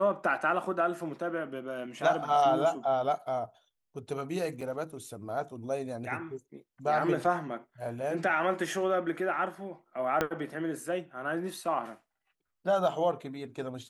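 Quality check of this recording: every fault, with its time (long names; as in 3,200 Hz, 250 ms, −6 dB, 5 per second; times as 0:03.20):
0:04.61: drop-out 3.6 ms
0:10.21: click −13 dBFS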